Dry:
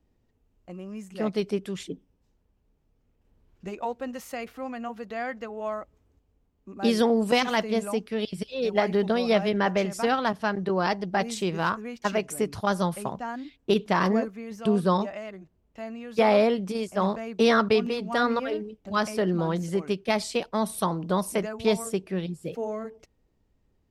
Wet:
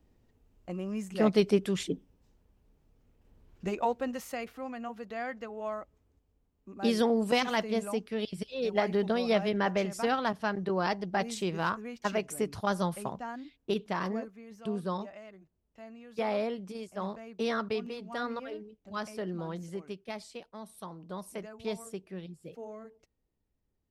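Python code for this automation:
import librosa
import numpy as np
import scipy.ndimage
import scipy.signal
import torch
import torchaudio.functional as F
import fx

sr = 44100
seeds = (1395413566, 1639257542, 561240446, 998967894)

y = fx.gain(x, sr, db=fx.line((3.74, 3.0), (4.63, -4.5), (13.09, -4.5), (14.22, -11.0), (19.65, -11.0), (20.63, -19.0), (21.55, -12.0)))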